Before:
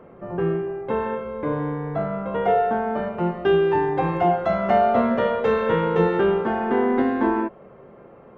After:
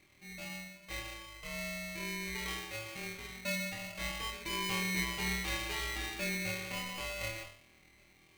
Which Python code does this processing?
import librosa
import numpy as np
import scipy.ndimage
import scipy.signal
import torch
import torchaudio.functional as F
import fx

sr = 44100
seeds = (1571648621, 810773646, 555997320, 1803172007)

y = fx.law_mismatch(x, sr, coded='mu', at=(2.2, 3.18))
y = scipy.signal.sosfilt(scipy.signal.ellip(4, 1.0, 40, 1100.0, 'highpass', fs=sr, output='sos'), y)
y = fx.room_flutter(y, sr, wall_m=4.2, rt60_s=0.63)
y = y * np.sign(np.sin(2.0 * np.pi * 1000.0 * np.arange(len(y)) / sr))
y = y * librosa.db_to_amplitude(-7.5)